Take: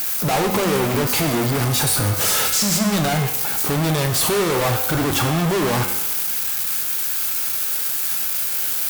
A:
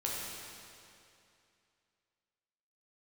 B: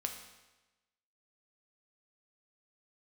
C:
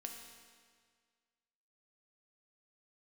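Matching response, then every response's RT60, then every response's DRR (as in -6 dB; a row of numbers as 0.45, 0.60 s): B; 2.6, 1.1, 1.8 s; -5.0, 3.5, 2.0 dB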